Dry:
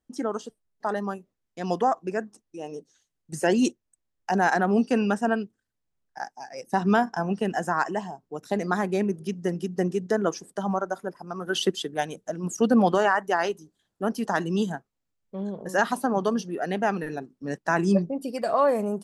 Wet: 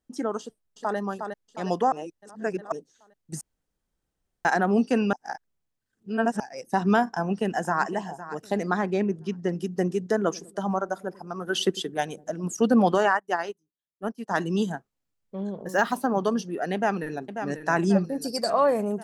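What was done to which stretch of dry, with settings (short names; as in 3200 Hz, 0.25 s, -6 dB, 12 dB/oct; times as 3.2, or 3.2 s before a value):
0.4–0.97 echo throw 0.36 s, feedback 55%, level -6 dB
1.92–2.72 reverse
3.41–4.45 room tone
5.13–6.4 reverse
7.03–7.88 echo throw 0.51 s, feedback 25%, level -14 dB
8.63–9.53 LPF 5100 Hz
10.18–12.43 dark delay 99 ms, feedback 57%, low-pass 430 Hz, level -19 dB
13.17–14.31 upward expander 2.5:1, over -39 dBFS
15.56–16.23 decimation joined by straight lines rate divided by 2×
16.74–17.31 echo throw 0.54 s, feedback 60%, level -8 dB
18.04–18.5 resonant high shelf 3800 Hz +9 dB, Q 3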